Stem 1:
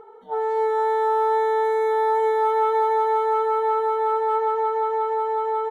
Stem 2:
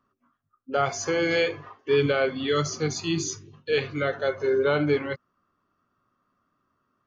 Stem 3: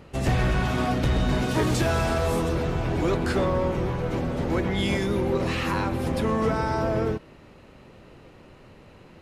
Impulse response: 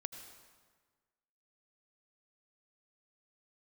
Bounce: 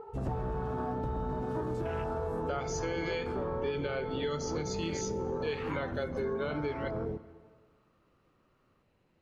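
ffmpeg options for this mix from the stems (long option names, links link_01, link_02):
-filter_complex "[0:a]lowpass=1200,asubboost=boost=10:cutoff=240,acompressor=threshold=-30dB:ratio=6,volume=-0.5dB[link_01];[1:a]adelay=1750,volume=-4dB,asplit=2[link_02][link_03];[link_03]volume=-10dB[link_04];[2:a]afwtdn=0.0398,volume=-8dB,asplit=2[link_05][link_06];[link_06]volume=-7.5dB[link_07];[3:a]atrim=start_sample=2205[link_08];[link_04][link_07]amix=inputs=2:normalize=0[link_09];[link_09][link_08]afir=irnorm=-1:irlink=0[link_10];[link_01][link_02][link_05][link_10]amix=inputs=4:normalize=0,acompressor=threshold=-31dB:ratio=6"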